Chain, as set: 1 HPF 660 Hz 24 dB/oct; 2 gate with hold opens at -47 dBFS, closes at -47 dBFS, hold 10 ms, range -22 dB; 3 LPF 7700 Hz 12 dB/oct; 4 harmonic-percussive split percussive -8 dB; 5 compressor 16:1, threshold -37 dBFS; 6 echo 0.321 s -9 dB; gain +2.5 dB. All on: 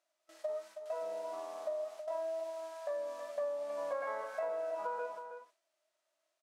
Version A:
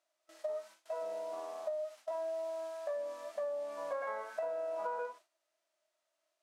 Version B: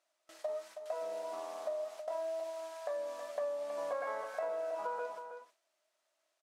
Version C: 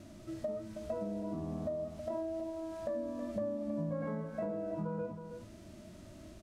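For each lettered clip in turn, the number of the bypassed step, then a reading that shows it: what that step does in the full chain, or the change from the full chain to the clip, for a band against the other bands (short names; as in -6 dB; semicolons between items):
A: 6, momentary loudness spread change -1 LU; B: 4, 4 kHz band +2.5 dB; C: 1, 250 Hz band +29.5 dB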